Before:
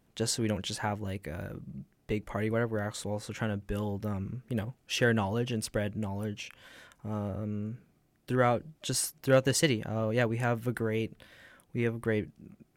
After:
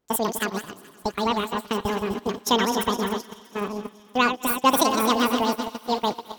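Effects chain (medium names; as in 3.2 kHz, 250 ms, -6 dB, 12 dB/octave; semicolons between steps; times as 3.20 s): backward echo that repeats 258 ms, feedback 75%, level -7.5 dB; gate -33 dBFS, range -16 dB; on a send: thinning echo 424 ms, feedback 79%, high-pass 550 Hz, level -22.5 dB; on the sum: speed mistake 7.5 ips tape played at 15 ips; trim +6 dB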